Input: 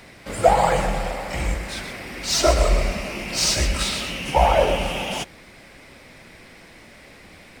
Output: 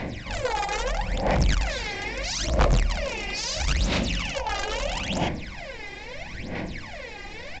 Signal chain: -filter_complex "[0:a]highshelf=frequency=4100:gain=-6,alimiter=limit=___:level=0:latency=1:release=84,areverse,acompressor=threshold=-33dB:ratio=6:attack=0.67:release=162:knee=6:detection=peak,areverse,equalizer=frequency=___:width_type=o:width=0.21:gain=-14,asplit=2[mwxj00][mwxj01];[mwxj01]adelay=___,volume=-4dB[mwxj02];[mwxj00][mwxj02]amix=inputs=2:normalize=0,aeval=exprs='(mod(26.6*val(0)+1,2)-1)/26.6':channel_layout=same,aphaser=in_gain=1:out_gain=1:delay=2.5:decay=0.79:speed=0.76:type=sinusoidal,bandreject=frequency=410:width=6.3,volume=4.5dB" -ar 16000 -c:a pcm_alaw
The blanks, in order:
-14.5dB, 1300, 42